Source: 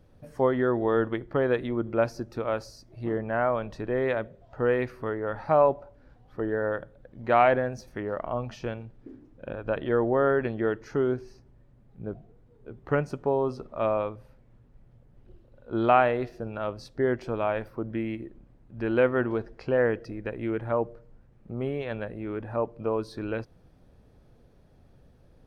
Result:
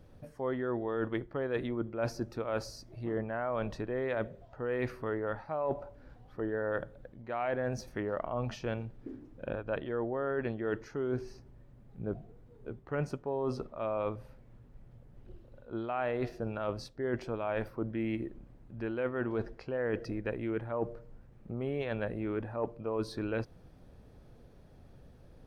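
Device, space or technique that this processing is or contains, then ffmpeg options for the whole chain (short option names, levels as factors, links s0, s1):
compression on the reversed sound: -af "areverse,acompressor=threshold=0.0282:ratio=20,areverse,volume=1.19"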